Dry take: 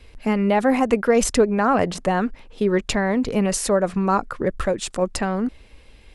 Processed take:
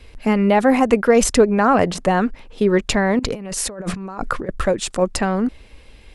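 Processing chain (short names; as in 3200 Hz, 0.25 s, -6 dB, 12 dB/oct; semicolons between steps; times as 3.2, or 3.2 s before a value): 3.19–4.49 negative-ratio compressor -31 dBFS, ratio -1; gain +3.5 dB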